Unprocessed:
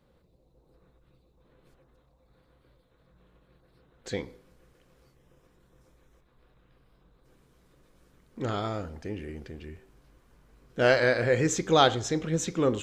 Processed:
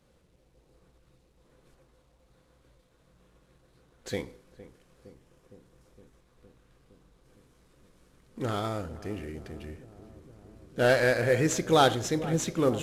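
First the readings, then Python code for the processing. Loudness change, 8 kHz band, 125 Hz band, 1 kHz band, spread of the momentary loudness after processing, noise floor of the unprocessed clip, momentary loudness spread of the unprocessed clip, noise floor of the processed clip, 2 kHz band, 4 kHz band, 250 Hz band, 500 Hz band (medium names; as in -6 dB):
-0.5 dB, 0.0 dB, +0.5 dB, -0.5 dB, 20 LU, -66 dBFS, 20 LU, -66 dBFS, -1.0 dB, -2.0 dB, 0.0 dB, -0.5 dB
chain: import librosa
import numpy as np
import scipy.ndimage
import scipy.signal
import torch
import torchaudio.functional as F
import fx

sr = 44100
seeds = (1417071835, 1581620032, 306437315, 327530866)

p1 = fx.cvsd(x, sr, bps=64000)
y = p1 + fx.echo_filtered(p1, sr, ms=462, feedback_pct=81, hz=960.0, wet_db=-15.5, dry=0)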